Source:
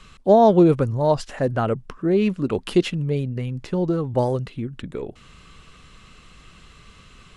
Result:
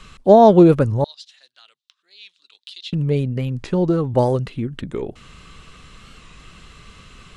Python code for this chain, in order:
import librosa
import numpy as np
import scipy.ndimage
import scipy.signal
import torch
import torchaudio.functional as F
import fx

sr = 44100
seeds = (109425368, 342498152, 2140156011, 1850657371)

y = fx.ladder_bandpass(x, sr, hz=4100.0, resonance_pct=70, at=(1.04, 2.93))
y = fx.record_warp(y, sr, rpm=45.0, depth_cents=100.0)
y = F.gain(torch.from_numpy(y), 4.0).numpy()